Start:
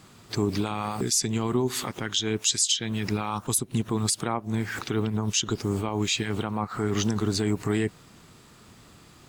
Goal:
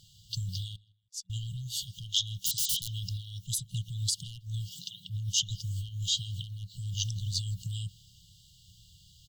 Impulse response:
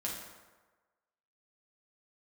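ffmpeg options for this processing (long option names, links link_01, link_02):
-filter_complex "[0:a]asettb=1/sr,asplit=3[link_01][link_02][link_03];[link_01]atrim=end=0.764[link_04];[link_02]atrim=start=0.76:end=1.3,asetpts=PTS-STARTPTS,afade=type=in:duration=0.004:curve=qsin,afade=type=out:start_time=0.536:duration=0.004:curve=qsin,agate=range=-57dB:threshold=-20dB:ratio=16:detection=peak[link_05];[link_03]atrim=start=1.296[link_06];[link_04][link_05]acrossfade=duration=0.004:curve1=hsin:curve2=qsin[link_07];[link_07][link_06]acrossfade=duration=0.004:curve1=qsin:curve2=hsin,equalizer=frequency=160:width_type=o:width=0.67:gain=-11,equalizer=frequency=630:width_type=o:width=0.67:gain=6,equalizer=frequency=10000:width_type=o:width=0.67:gain=-10,asplit=2[link_08][link_09];[link_09]adelay=161,lowpass=frequency=3200:poles=1,volume=-24dB,asplit=2[link_10][link_11];[link_11]adelay=161,lowpass=frequency=3200:poles=1,volume=0.25[link_12];[link_08][link_10][link_12]amix=inputs=3:normalize=0,asplit=3[link_13][link_14][link_15];[link_13]afade=type=out:start_time=2.45:duration=0.02[link_16];[link_14]aeval=exprs='(mod(13.3*val(0)+1,2)-1)/13.3':channel_layout=same,afade=type=in:start_time=2.45:duration=0.02,afade=type=out:start_time=2.88:duration=0.02[link_17];[link_15]afade=type=in:start_time=2.88:duration=0.02[link_18];[link_16][link_17][link_18]amix=inputs=3:normalize=0,asplit=3[link_19][link_20][link_21];[link_19]afade=type=out:start_time=4.69:duration=0.02[link_22];[link_20]afreqshift=95,afade=type=in:start_time=4.69:duration=0.02,afade=type=out:start_time=5.09:duration=0.02[link_23];[link_21]afade=type=in:start_time=5.09:duration=0.02[link_24];[link_22][link_23][link_24]amix=inputs=3:normalize=0,volume=16.5dB,asoftclip=hard,volume=-16.5dB,afftfilt=real='re*(1-between(b*sr/4096,190,2800))':imag='im*(1-between(b*sr/4096,190,2800))':win_size=4096:overlap=0.75"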